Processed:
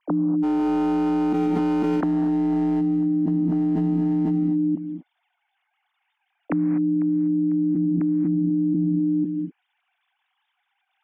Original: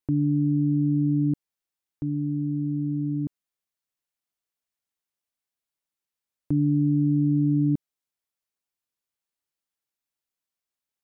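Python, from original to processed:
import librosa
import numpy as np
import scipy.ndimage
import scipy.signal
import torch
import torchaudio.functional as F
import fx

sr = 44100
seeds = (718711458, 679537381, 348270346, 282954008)

y = fx.sine_speech(x, sr)
y = fx.env_lowpass_down(y, sr, base_hz=520.0, full_db=-22.5)
y = fx.overload_stage(y, sr, gain_db=25.0, at=(0.42, 2.8), fade=0.02)
y = fx.echo_feedback(y, sr, ms=498, feedback_pct=40, wet_db=-18)
y = fx.rev_gated(y, sr, seeds[0], gate_ms=270, shape='rising', drr_db=7.0)
y = fx.env_flatten(y, sr, amount_pct=100)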